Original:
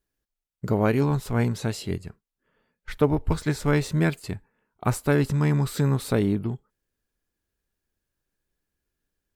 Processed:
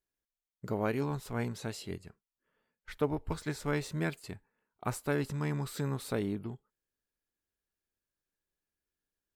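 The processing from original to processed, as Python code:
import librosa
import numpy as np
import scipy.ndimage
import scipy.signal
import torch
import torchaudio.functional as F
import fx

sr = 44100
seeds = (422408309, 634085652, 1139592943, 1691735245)

y = fx.low_shelf(x, sr, hz=220.0, db=-6.5)
y = y * librosa.db_to_amplitude(-8.0)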